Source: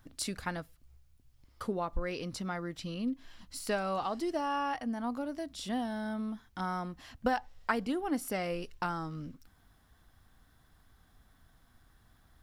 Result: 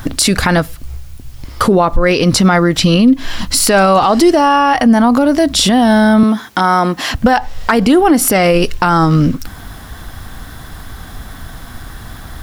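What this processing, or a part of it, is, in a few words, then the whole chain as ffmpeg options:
loud club master: -filter_complex "[0:a]acompressor=threshold=-43dB:ratio=1.5,asoftclip=type=hard:threshold=-25.5dB,alimiter=level_in=34.5dB:limit=-1dB:release=50:level=0:latency=1,asettb=1/sr,asplit=3[link_01][link_02][link_03];[link_01]atrim=end=6.234[link_04];[link_02]atrim=start=6.23:end=7.14,asetpts=PTS-STARTPTS,afade=type=in:duration=0.004:curve=qsin,afade=type=out:start_time=0.906:duration=0.004:curve=qsin,highpass=240[link_05];[link_03]atrim=start=7.136[link_06];[link_04][link_05]acrossfade=duration=0.004:curve1=hsin:curve2=qsin[link_07];[link_07][link_06]acrossfade=duration=0.004:curve1=qsin:curve2=hsin,volume=-1dB"

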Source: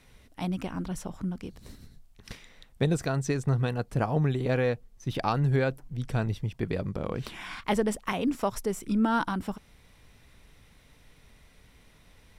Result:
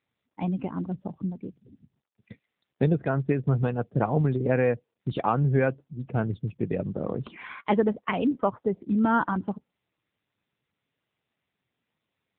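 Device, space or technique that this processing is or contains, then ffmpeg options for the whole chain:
mobile call with aggressive noise cancelling: -af "highpass=120,afftdn=noise_reduction=30:noise_floor=-40,volume=4dB" -ar 8000 -c:a libopencore_amrnb -b:a 7950

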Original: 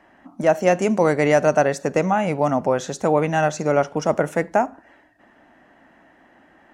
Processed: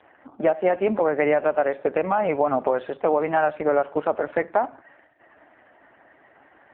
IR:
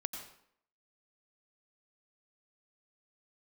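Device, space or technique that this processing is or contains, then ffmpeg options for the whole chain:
voicemail: -af "highpass=340,lowpass=2700,acompressor=threshold=-20dB:ratio=8,volume=4.5dB" -ar 8000 -c:a libopencore_amrnb -b:a 4750

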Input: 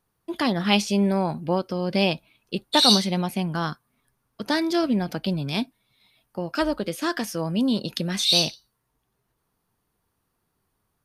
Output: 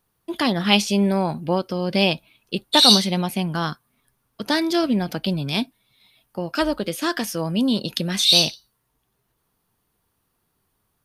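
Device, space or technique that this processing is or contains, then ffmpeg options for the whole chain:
presence and air boost: -af "equalizer=frequency=3200:width_type=o:width=0.77:gain=3,highshelf=frequency=10000:gain=6,volume=2dB"

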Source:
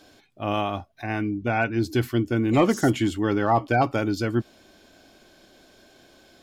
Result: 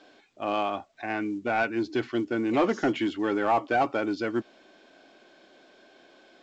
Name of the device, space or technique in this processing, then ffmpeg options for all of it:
telephone: -af "highpass=290,lowpass=3400,asoftclip=type=tanh:threshold=-16dB" -ar 16000 -c:a pcm_alaw

